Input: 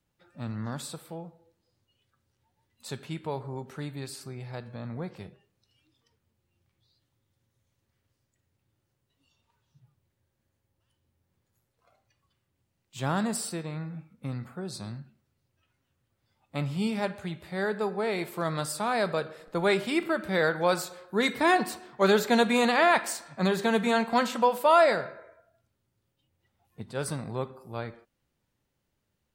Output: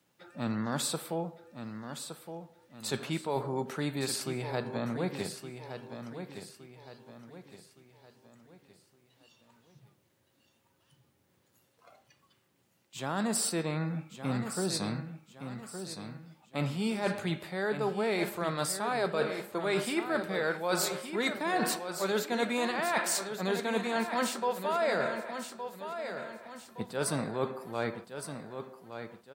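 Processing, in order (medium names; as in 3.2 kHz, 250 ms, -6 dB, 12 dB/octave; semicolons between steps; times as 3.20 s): high-pass 190 Hz 12 dB/octave; reverse; compression 10:1, threshold -36 dBFS, peak gain reduction 20.5 dB; reverse; feedback delay 1166 ms, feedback 40%, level -9 dB; trim +8.5 dB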